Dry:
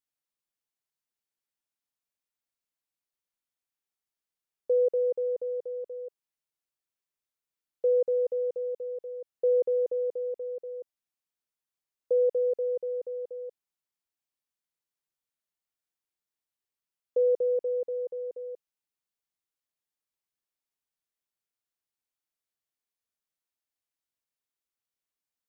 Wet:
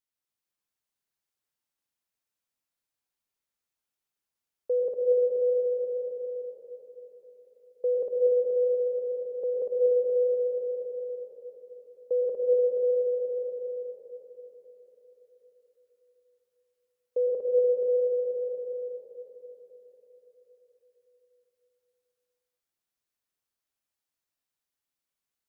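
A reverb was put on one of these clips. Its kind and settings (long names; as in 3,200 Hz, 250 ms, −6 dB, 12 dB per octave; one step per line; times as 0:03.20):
dense smooth reverb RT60 4.5 s, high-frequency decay 0.8×, pre-delay 95 ms, DRR −3 dB
level −2 dB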